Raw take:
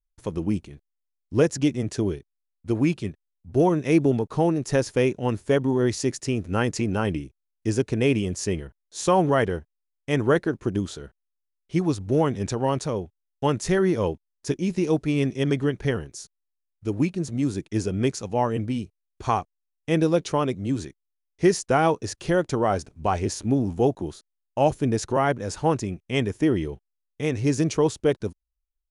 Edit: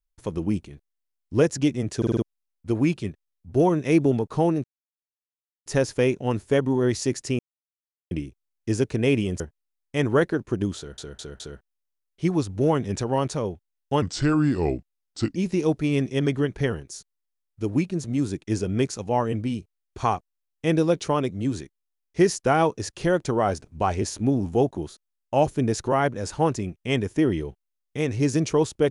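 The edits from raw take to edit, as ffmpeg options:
-filter_complex "[0:a]asplit=15[a][b][c][d][e][f][g][h][i][j][k][l][m][n][o];[a]atrim=end=2.022[p];[b]atrim=start=1.968:end=2.022[q];[c]atrim=start=1.968:end=2.022[r];[d]atrim=start=1.968:end=2.022[s];[e]atrim=start=1.968:end=2.022[t];[f]atrim=start=2.218:end=4.64,asetpts=PTS-STARTPTS,afade=t=out:st=2.418:d=0.004:c=hsin,apad=pad_dur=1.02[u];[g]atrim=start=4.64:end=6.37,asetpts=PTS-STARTPTS,afade=t=in:d=0.004:c=hsin,afade=t=out:st=1.726:d=0.004:c=hsin[v];[h]atrim=start=6.37:end=7.09,asetpts=PTS-STARTPTS,volume=0[w];[i]atrim=start=7.09:end=8.382,asetpts=PTS-STARTPTS,afade=t=in:d=0.004:c=hsin[x];[j]atrim=start=9.538:end=11.122[y];[k]atrim=start=10.908:end=11.122[z];[l]atrim=start=10.908:end=11.122[aa];[m]atrim=start=10.908:end=13.534[ab];[n]atrim=start=13.53:end=14.6,asetpts=PTS-STARTPTS,asetrate=35280,aresample=44100[ac];[o]atrim=start=14.596[ad];[p][q]acrossfade=d=0.004:c1=hsin:c2=hsin[ae];[ae][r]acrossfade=d=0.004:c1=hsin:c2=hsin[af];[af][s]acrossfade=d=0.004:c1=hsin:c2=hsin[ag];[ag][t]acrossfade=d=0.004:c1=hsin:c2=hsin[ah];[u][v][w][x]concat=n=4:v=0:a=1[ai];[ah][ai]acrossfade=d=0.004:c1=hsin:c2=hsin[aj];[aj][y]acrossfade=d=0.004:c1=hsin:c2=hsin[ak];[ak][z]acrossfade=d=0.004:c1=hsin:c2=hsin[al];[al][aa]acrossfade=d=0.004:c1=hsin:c2=hsin[am];[am][ab]acrossfade=d=0.004:c1=hsin:c2=hsin[an];[an][ac]acrossfade=d=0.004:c1=hsin:c2=hsin[ao];[ao][ad]acrossfade=d=0.004:c1=hsin:c2=hsin"

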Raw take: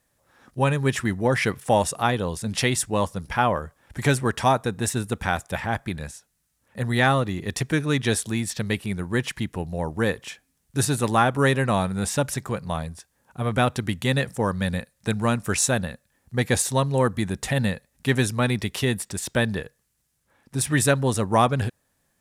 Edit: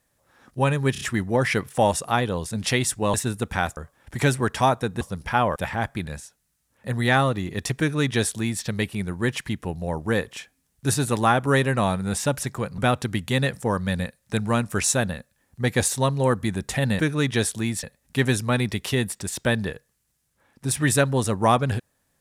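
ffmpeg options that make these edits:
-filter_complex "[0:a]asplit=11[a][b][c][d][e][f][g][h][i][j][k];[a]atrim=end=0.952[l];[b]atrim=start=0.918:end=0.952[m];[c]atrim=start=0.918:end=0.952[n];[d]atrim=start=0.918:end=3.052[o];[e]atrim=start=4.838:end=5.472[p];[f]atrim=start=3.598:end=4.842[q];[g]atrim=start=3.048:end=3.602[r];[h]atrim=start=5.468:end=12.692[s];[i]atrim=start=13.518:end=17.732[t];[j]atrim=start=7.698:end=8.542[u];[k]atrim=start=17.728[v];[l][m]acrossfade=d=0.004:c1=hsin:c2=hsin[w];[w][n]acrossfade=d=0.004:c1=hsin:c2=hsin[x];[x][o]acrossfade=d=0.004:c1=hsin:c2=hsin[y];[y][p]acrossfade=d=0.004:c1=hsin:c2=hsin[z];[z][q]acrossfade=d=0.004:c1=hsin:c2=hsin[aa];[aa][r]acrossfade=d=0.004:c1=hsin:c2=hsin[ab];[ab][s]acrossfade=d=0.004:c1=hsin:c2=hsin[ac];[ac][t]acrossfade=d=0.004:c1=hsin:c2=hsin[ad];[ad][u]acrossfade=d=0.004:c1=hsin:c2=hsin[ae];[ae][v]acrossfade=d=0.004:c1=hsin:c2=hsin"

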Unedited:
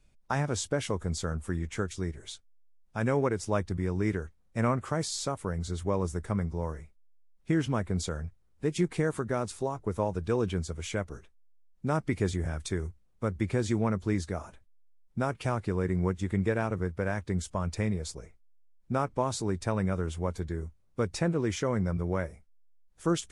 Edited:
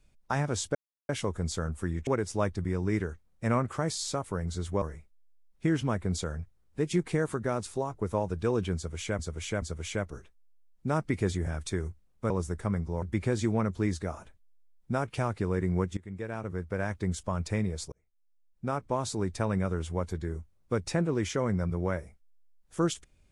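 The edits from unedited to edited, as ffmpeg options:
-filter_complex "[0:a]asplit=10[a][b][c][d][e][f][g][h][i][j];[a]atrim=end=0.75,asetpts=PTS-STARTPTS,afade=t=out:st=0.746:d=0.004:c=hsin,apad=pad_dur=0.34[k];[b]atrim=start=0.75:end=1.732,asetpts=PTS-STARTPTS,afade=t=in:d=0.004:c=hsin[l];[c]atrim=start=3.198:end=5.952[m];[d]atrim=start=6.668:end=11.042[n];[e]atrim=start=10.608:end=11.042[o];[f]atrim=start=10.608:end=13.292[p];[g]atrim=start=5.948:end=6.672[q];[h]atrim=start=13.288:end=16.24,asetpts=PTS-STARTPTS,afade=t=out:st=2.948:d=0.004:c=hsin:silence=0.1[r];[i]atrim=start=16.24:end=18.19,asetpts=PTS-STARTPTS,afade=t=in:d=0.94:silence=0.1,afade=t=out:st=1.946:d=0.004:c=hsin[s];[j]atrim=start=18.19,asetpts=PTS-STARTPTS,afade=t=in:d=1.55:c=qsin[t];[k][l]concat=n=2:v=0:a=1[u];[u][m]acrossfade=d=0.004:c1=hsin:c2=hsin[v];[v][n]acrossfade=d=0.004:c1=hsin:c2=hsin[w];[w][o]acrossfade=d=0.004:c1=hsin:c2=hsin[x];[x][p]acrossfade=d=0.004:c1=hsin:c2=hsin[y];[y][q]acrossfade=d=0.004:c1=hsin:c2=hsin[z];[r][s][t]concat=n=3:v=0:a=1[aa];[z][aa]acrossfade=d=0.004:c1=hsin:c2=hsin"

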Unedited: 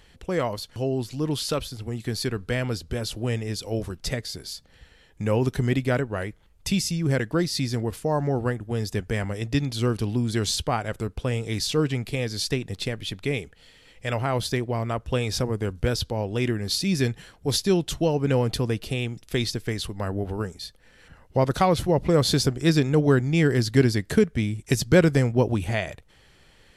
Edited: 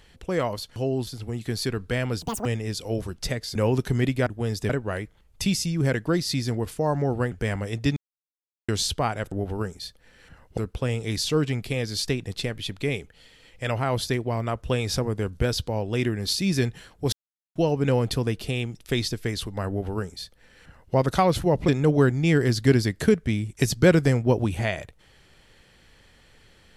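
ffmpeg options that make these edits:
-filter_complex "[0:a]asplit=15[a][b][c][d][e][f][g][h][i][j][k][l][m][n][o];[a]atrim=end=1.072[p];[b]atrim=start=1.658:end=2.814[q];[c]atrim=start=2.81:end=3.27,asetpts=PTS-STARTPTS,asetrate=86436,aresample=44100[r];[d]atrim=start=3.266:end=4.372[s];[e]atrim=start=5.238:end=5.952[t];[f]atrim=start=8.568:end=9.002[u];[g]atrim=start=5.948:end=8.572[v];[h]atrim=start=8.998:end=9.65,asetpts=PTS-STARTPTS,afade=t=out:st=0.648:d=0.004:c=hsin[w];[i]atrim=start=9.65:end=10.37,asetpts=PTS-STARTPTS,volume=0[x];[j]atrim=start=10.37:end=11.002,asetpts=PTS-STARTPTS,afade=t=in:d=0.004:c=hsin[y];[k]atrim=start=20.108:end=21.372[z];[l]atrim=start=10.998:end=17.55,asetpts=PTS-STARTPTS,afade=t=out:st=6.548:d=0.004:c=hsin[aa];[m]atrim=start=17.55:end=17.98,asetpts=PTS-STARTPTS,volume=0[ab];[n]atrim=start=17.98:end=22.112,asetpts=PTS-STARTPTS,afade=t=in:d=0.004:c=hsin[ac];[o]atrim=start=22.778[ad];[p][q]acrossfade=d=0.004:c1=hsin:c2=hsin[ae];[ae][r]acrossfade=d=0.004:c1=hsin:c2=hsin[af];[af][s]acrossfade=d=0.004:c1=hsin:c2=hsin[ag];[ag][t]acrossfade=d=0.004:c1=hsin:c2=hsin[ah];[ah][u]acrossfade=d=0.004:c1=hsin:c2=hsin[ai];[ai][v]acrossfade=d=0.004:c1=hsin:c2=hsin[aj];[w][x][y]concat=n=3:v=0:a=1[ak];[aj][ak]acrossfade=d=0.004:c1=hsin:c2=hsin[al];[al][z]acrossfade=d=0.004:c1=hsin:c2=hsin[am];[aa][ab][ac]concat=n=3:v=0:a=1[an];[am][an]acrossfade=d=0.004:c1=hsin:c2=hsin[ao];[ao][ad]acrossfade=d=0.004:c1=hsin:c2=hsin"

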